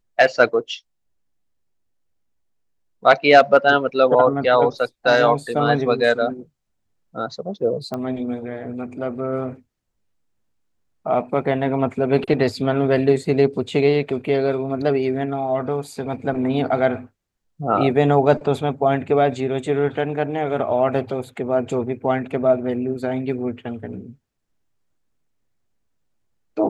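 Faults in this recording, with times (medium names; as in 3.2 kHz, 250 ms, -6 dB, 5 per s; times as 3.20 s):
7.94 s: pop -15 dBFS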